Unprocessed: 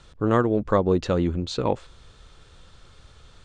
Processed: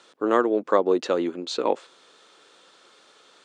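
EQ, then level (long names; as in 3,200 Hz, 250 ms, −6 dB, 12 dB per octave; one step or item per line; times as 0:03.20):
high-pass filter 290 Hz 24 dB per octave
+1.5 dB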